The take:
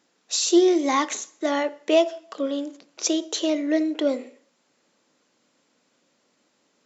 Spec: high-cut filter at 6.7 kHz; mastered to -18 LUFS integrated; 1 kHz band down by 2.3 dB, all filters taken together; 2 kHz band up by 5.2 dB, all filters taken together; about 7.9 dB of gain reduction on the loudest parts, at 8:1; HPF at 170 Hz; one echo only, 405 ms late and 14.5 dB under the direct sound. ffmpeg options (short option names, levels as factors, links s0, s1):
-af "highpass=170,lowpass=6700,equalizer=f=1000:t=o:g=-4.5,equalizer=f=2000:t=o:g=7,acompressor=threshold=0.0891:ratio=8,aecho=1:1:405:0.188,volume=2.82"